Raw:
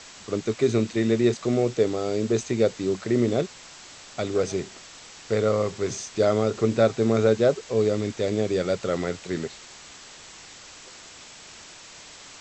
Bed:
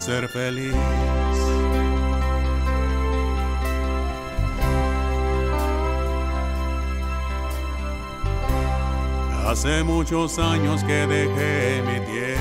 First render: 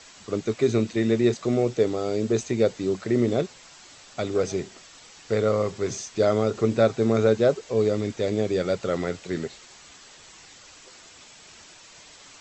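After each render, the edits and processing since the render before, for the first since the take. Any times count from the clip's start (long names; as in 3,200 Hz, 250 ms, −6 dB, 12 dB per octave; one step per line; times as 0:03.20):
broadband denoise 6 dB, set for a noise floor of −46 dBFS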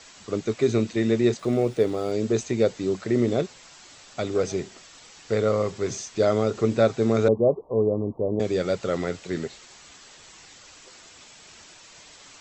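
0:01.39–0:02.12: linearly interpolated sample-rate reduction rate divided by 3×
0:07.28–0:08.40: Butterworth low-pass 1,100 Hz 96 dB per octave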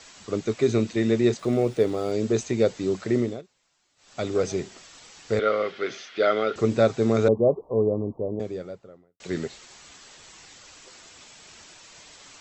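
0:03.14–0:04.24: duck −22 dB, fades 0.28 s
0:05.39–0:06.56: loudspeaker in its box 340–4,400 Hz, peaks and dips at 970 Hz −8 dB, 1,400 Hz +10 dB, 2,100 Hz +7 dB, 3,200 Hz +7 dB
0:07.68–0:09.20: fade out and dull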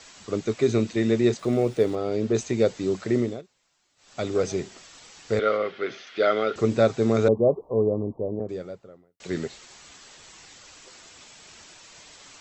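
0:01.95–0:02.35: high-frequency loss of the air 110 metres
0:05.57–0:06.07: high-frequency loss of the air 120 metres
0:08.03–0:08.49: low-pass filter 1,200 Hz 24 dB per octave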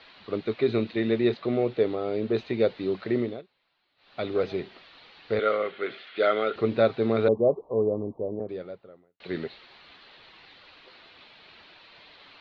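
Chebyshev low-pass filter 4,200 Hz, order 5
low-shelf EQ 220 Hz −8 dB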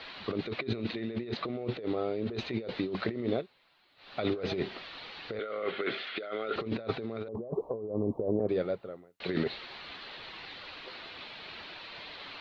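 compressor whose output falls as the input rises −34 dBFS, ratio −1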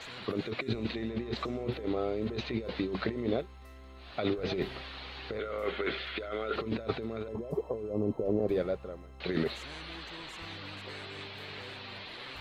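mix in bed −27.5 dB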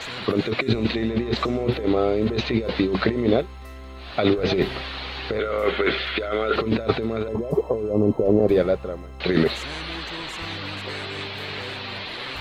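level +11.5 dB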